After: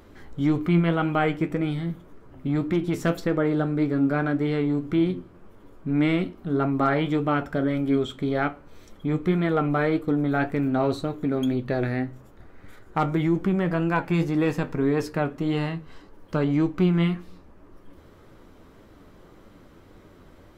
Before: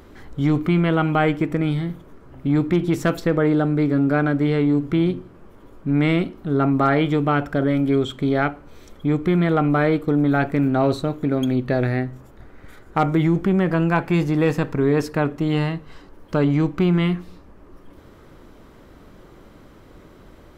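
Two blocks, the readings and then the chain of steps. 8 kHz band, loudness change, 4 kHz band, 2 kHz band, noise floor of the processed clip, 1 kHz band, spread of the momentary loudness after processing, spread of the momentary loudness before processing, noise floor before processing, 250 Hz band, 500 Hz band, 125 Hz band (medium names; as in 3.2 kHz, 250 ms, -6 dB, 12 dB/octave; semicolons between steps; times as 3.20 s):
no reading, -4.5 dB, -4.0 dB, -4.0 dB, -51 dBFS, -4.0 dB, 7 LU, 6 LU, -47 dBFS, -4.0 dB, -4.5 dB, -5.0 dB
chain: flange 1.8 Hz, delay 8.8 ms, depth 3.9 ms, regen +58%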